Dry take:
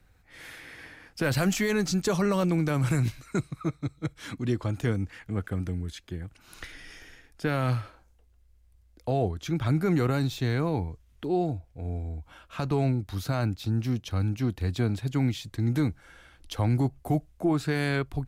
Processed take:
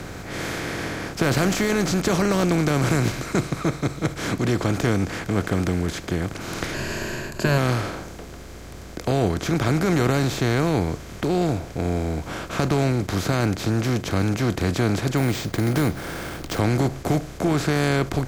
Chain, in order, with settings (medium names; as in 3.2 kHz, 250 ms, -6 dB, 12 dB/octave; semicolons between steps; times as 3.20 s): spectral levelling over time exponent 0.4; 6.74–7.58 s: rippled EQ curve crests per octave 1.4, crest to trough 11 dB; 15.17–16.59 s: careless resampling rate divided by 4×, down none, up hold